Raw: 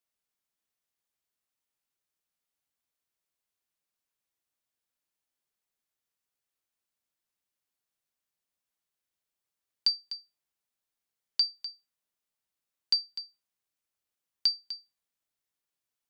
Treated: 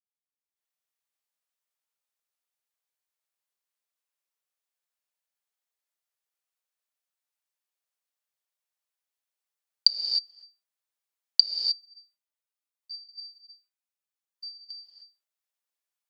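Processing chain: 11.58–14.63 median-filter separation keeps harmonic; recorder AGC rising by 46 dB/s; HPF 460 Hz 24 dB/oct; gate with hold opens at -43 dBFS; non-linear reverb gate 0.33 s rising, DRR 2.5 dB; gain -12.5 dB

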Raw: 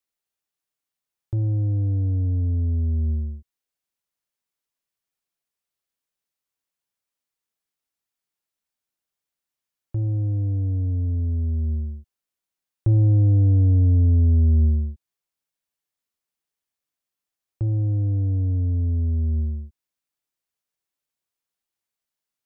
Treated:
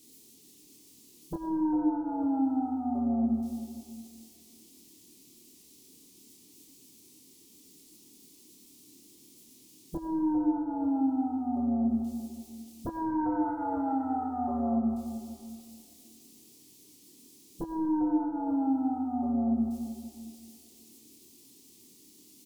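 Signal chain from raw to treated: switching spikes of -25.5 dBFS; spectral gate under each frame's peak -10 dB weak; inverse Chebyshev low-pass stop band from 570 Hz, stop band 40 dB; resonant low shelf 220 Hz -6.5 dB, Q 1.5; compressor 2.5:1, threshold -47 dBFS, peak gain reduction 10.5 dB; sine folder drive 15 dB, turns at -30 dBFS; doubler 26 ms -3 dB; on a send: reverb RT60 2.1 s, pre-delay 65 ms, DRR 4.5 dB

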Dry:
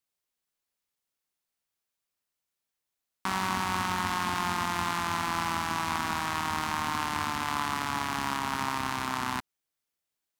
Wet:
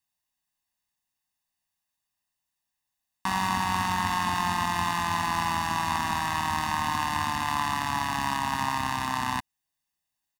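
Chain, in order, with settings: comb 1.1 ms, depth 77%

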